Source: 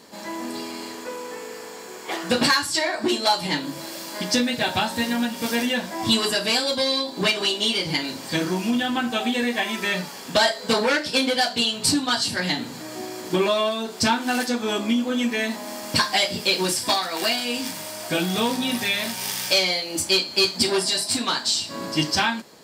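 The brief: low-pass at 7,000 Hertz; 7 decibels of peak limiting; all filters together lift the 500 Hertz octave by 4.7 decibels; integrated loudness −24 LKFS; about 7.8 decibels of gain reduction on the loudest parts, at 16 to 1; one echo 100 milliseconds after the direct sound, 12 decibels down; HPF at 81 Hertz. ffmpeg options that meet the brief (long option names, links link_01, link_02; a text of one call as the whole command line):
ffmpeg -i in.wav -af "highpass=81,lowpass=7000,equalizer=frequency=500:width_type=o:gain=6,acompressor=threshold=-20dB:ratio=16,alimiter=limit=-17dB:level=0:latency=1,aecho=1:1:100:0.251,volume=2.5dB" out.wav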